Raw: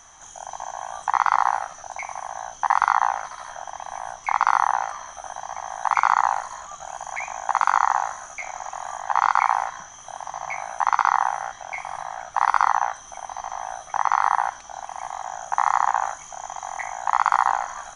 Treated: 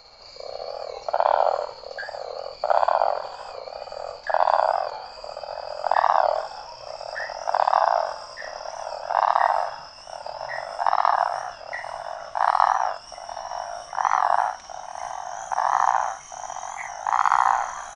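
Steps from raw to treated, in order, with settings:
pitch glide at a constant tempo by −6 semitones ending unshifted
double-tracking delay 49 ms −6.5 dB
wow of a warped record 45 rpm, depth 100 cents

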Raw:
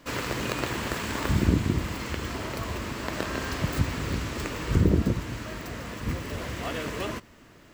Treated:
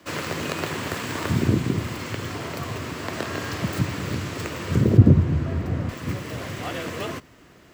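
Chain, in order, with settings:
0:04.97–0:05.89: spectral tilt −3.5 dB per octave
frequency shifter +33 Hz
level +1.5 dB

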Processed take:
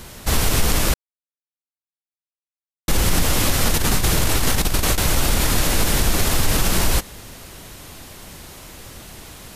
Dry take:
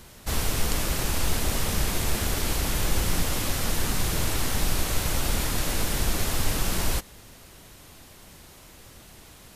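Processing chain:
0:00.94–0:02.88: silence
0:03.65–0:04.98: compressor whose output falls as the input rises −24 dBFS, ratio −0.5
boost into a limiter +16 dB
level −6.5 dB

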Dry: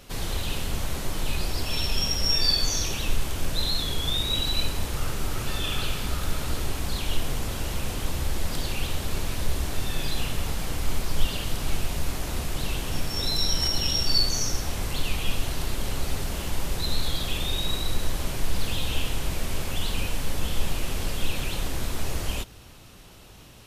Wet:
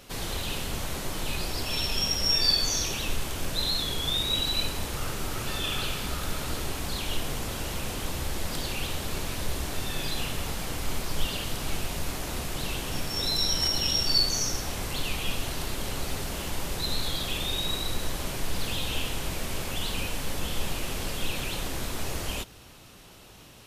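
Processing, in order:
low-shelf EQ 110 Hz −7 dB

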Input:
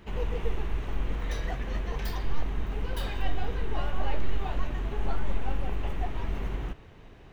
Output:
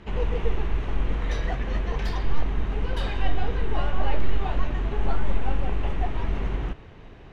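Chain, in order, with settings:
high-frequency loss of the air 72 metres
level +5 dB

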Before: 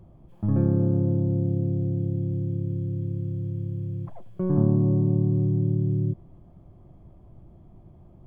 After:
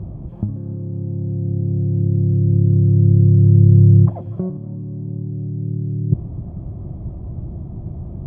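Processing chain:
low-shelf EQ 340 Hz −3 dB
in parallel at −8 dB: soft clipping −24.5 dBFS, distortion −10 dB
on the sum: compressor whose output falls as the input rises −30 dBFS, ratio −0.5
high-pass filter 73 Hz
spectral tilt −4.5 dB per octave
on a send at −13 dB: convolution reverb RT60 0.30 s, pre-delay 224 ms
on the sum: level +2.5 dB

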